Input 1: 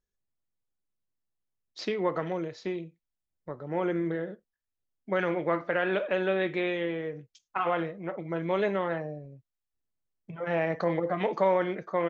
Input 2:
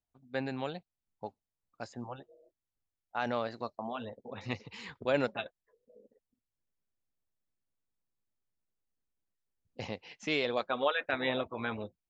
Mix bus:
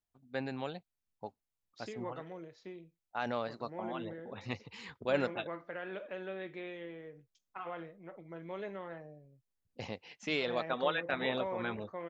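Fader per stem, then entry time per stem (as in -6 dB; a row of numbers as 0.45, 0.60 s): -14.5, -2.5 dB; 0.00, 0.00 s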